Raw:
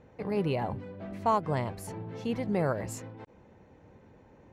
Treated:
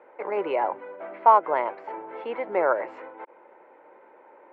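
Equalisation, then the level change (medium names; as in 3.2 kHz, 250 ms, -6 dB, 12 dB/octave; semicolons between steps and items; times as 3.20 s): cabinet simulation 270–3700 Hz, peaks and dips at 350 Hz +7 dB, 570 Hz +6 dB, 930 Hz +9 dB, 1.4 kHz +8 dB, 2.2 kHz +9 dB, 3.1 kHz +3 dB; three-band isolator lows -23 dB, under 360 Hz, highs -14 dB, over 2.1 kHz; +4.0 dB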